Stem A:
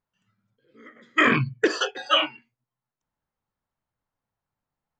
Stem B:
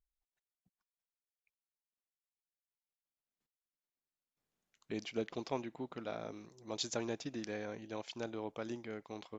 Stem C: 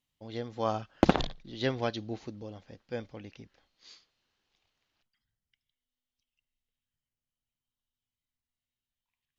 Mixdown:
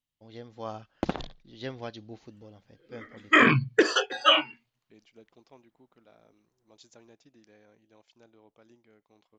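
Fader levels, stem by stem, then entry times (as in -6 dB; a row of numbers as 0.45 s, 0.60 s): +0.5 dB, -17.0 dB, -7.0 dB; 2.15 s, 0.00 s, 0.00 s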